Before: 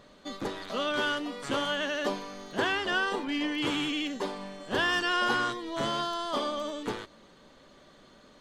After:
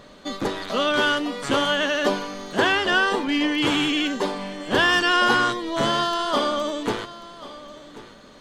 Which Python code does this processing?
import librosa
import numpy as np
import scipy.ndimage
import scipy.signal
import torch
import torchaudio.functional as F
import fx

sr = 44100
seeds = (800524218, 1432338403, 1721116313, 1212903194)

y = x + 10.0 ** (-17.0 / 20.0) * np.pad(x, (int(1087 * sr / 1000.0), 0))[:len(x)]
y = y * 10.0 ** (8.5 / 20.0)